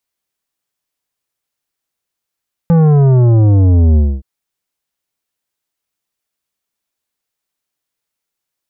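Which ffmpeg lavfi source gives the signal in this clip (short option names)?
-f lavfi -i "aevalsrc='0.447*clip((1.52-t)/0.25,0,1)*tanh(3.55*sin(2*PI*170*1.52/log(65/170)*(exp(log(65/170)*t/1.52)-1)))/tanh(3.55)':d=1.52:s=44100"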